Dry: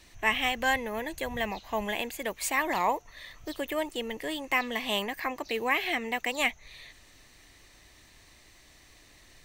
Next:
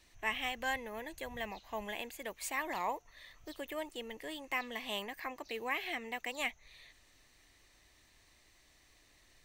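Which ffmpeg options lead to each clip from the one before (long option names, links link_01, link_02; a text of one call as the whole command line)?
ffmpeg -i in.wav -af "equalizer=frequency=150:width_type=o:width=2.2:gain=-2.5,volume=-9dB" out.wav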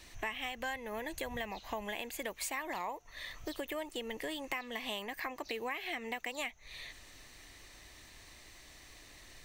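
ffmpeg -i in.wav -af "acompressor=threshold=-47dB:ratio=6,volume=10.5dB" out.wav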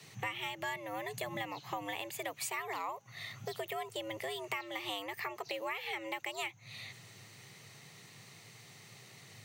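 ffmpeg -i in.wav -af "afreqshift=98" out.wav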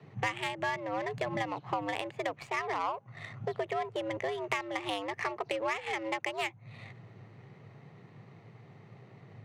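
ffmpeg -i in.wav -af "adynamicsmooth=sensitivity=5.5:basefreq=960,volume=7dB" out.wav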